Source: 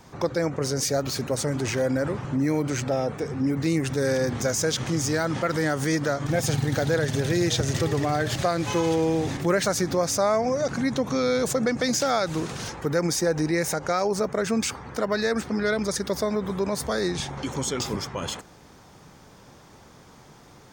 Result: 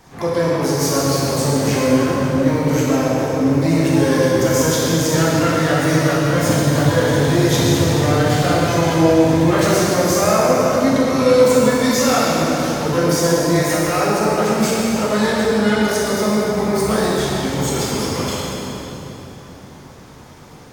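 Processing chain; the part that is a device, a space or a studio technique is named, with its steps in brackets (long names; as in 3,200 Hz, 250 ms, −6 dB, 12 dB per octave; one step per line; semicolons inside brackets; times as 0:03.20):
shimmer-style reverb (pitch-shifted copies added +12 semitones −9 dB; convolution reverb RT60 3.7 s, pre-delay 8 ms, DRR −6.5 dB)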